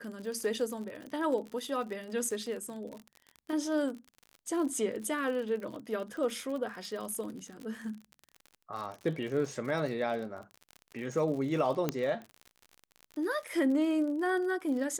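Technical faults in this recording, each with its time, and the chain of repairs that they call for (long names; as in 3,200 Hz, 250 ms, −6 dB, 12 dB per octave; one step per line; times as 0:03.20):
surface crackle 55 per second −38 dBFS
0:11.89: click −15 dBFS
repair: click removal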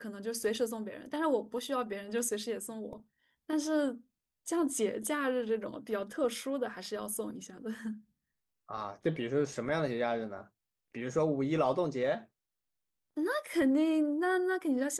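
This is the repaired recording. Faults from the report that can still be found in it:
none of them is left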